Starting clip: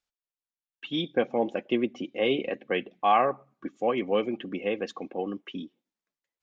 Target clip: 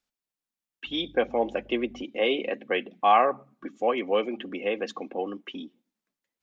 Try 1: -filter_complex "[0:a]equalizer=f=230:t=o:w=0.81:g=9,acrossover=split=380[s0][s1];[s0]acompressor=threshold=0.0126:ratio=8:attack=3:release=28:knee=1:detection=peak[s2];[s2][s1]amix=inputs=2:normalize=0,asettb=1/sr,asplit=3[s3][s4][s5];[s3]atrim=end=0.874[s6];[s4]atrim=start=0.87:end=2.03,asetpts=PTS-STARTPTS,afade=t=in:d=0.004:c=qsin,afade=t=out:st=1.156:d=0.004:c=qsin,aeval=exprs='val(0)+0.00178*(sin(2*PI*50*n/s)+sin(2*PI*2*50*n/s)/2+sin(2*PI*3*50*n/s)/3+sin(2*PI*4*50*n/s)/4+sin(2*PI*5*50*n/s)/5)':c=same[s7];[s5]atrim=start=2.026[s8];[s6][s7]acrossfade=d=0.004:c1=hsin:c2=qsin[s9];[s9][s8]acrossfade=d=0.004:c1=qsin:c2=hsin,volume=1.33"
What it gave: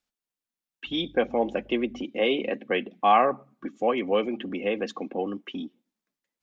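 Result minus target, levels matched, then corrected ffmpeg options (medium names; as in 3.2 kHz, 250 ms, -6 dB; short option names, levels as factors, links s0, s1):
compression: peak gain reduction -9 dB
-filter_complex "[0:a]equalizer=f=230:t=o:w=0.81:g=9,acrossover=split=380[s0][s1];[s0]acompressor=threshold=0.00398:ratio=8:attack=3:release=28:knee=1:detection=peak[s2];[s2][s1]amix=inputs=2:normalize=0,asettb=1/sr,asplit=3[s3][s4][s5];[s3]atrim=end=0.874[s6];[s4]atrim=start=0.87:end=2.03,asetpts=PTS-STARTPTS,afade=t=in:d=0.004:c=qsin,afade=t=out:st=1.156:d=0.004:c=qsin,aeval=exprs='val(0)+0.00178*(sin(2*PI*50*n/s)+sin(2*PI*2*50*n/s)/2+sin(2*PI*3*50*n/s)/3+sin(2*PI*4*50*n/s)/4+sin(2*PI*5*50*n/s)/5)':c=same[s7];[s5]atrim=start=2.026[s8];[s6][s7]acrossfade=d=0.004:c1=hsin:c2=qsin[s9];[s9][s8]acrossfade=d=0.004:c1=qsin:c2=hsin,volume=1.33"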